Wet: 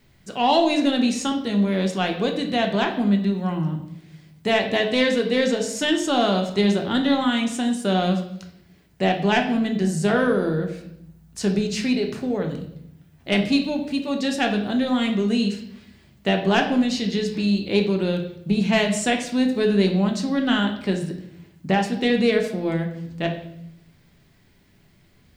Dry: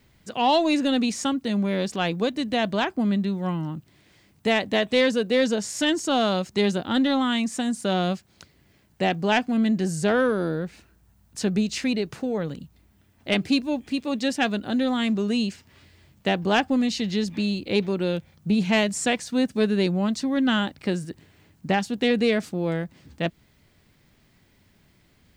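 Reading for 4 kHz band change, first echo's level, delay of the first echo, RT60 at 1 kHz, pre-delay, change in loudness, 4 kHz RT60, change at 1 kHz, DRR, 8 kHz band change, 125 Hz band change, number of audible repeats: +2.0 dB, no echo audible, no echo audible, 0.65 s, 3 ms, +2.0 dB, 0.65 s, +2.0 dB, 3.0 dB, +1.0 dB, +3.5 dB, no echo audible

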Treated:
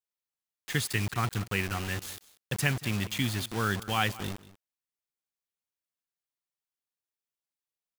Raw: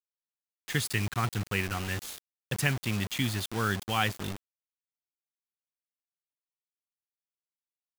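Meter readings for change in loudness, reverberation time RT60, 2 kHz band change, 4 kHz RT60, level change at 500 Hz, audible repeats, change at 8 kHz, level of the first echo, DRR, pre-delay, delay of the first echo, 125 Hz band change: 0.0 dB, no reverb audible, 0.0 dB, no reverb audible, 0.0 dB, 1, 0.0 dB, −18.5 dB, no reverb audible, no reverb audible, 189 ms, 0.0 dB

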